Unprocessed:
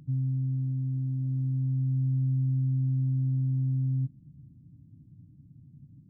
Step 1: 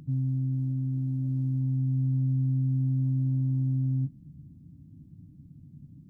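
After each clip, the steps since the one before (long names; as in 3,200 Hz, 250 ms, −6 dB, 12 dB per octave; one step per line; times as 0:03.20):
parametric band 120 Hz −12 dB 0.22 octaves
level +5.5 dB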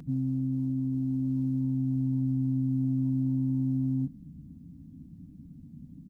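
comb filter 4.2 ms, depth 67%
level +3 dB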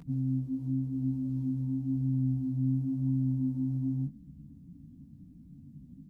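multi-voice chorus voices 2, 0.93 Hz, delay 18 ms, depth 4.1 ms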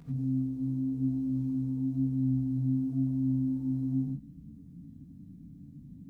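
reverb whose tail is shaped and stops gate 110 ms rising, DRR −3 dB
level −2.5 dB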